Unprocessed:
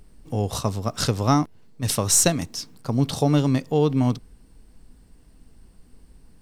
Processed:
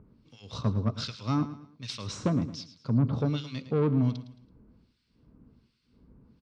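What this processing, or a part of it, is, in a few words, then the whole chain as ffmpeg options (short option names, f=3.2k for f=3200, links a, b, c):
guitar amplifier with harmonic tremolo: -filter_complex "[0:a]acrossover=split=1700[a][b];[a]aeval=exprs='val(0)*(1-1/2+1/2*cos(2*PI*1.3*n/s))':c=same[c];[b]aeval=exprs='val(0)*(1-1/2-1/2*cos(2*PI*1.3*n/s))':c=same[d];[c][d]amix=inputs=2:normalize=0,asoftclip=type=tanh:threshold=-20.5dB,highpass=75,equalizer=f=120:t=q:w=4:g=6,equalizer=f=220:t=q:w=4:g=5,equalizer=f=750:t=q:w=4:g=-10,equalizer=f=1.8k:t=q:w=4:g=-9,equalizer=f=2.9k:t=q:w=4:g=-4,lowpass=f=4.5k:w=0.5412,lowpass=f=4.5k:w=1.3066,aecho=1:1:110|220|330:0.211|0.074|0.0259"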